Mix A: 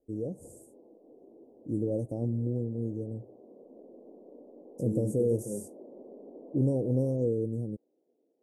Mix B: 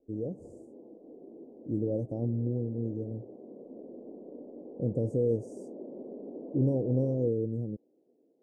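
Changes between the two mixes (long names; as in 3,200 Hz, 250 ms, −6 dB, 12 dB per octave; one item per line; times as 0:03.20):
second voice: muted
background: add low-shelf EQ 410 Hz +11 dB
master: add high-frequency loss of the air 140 metres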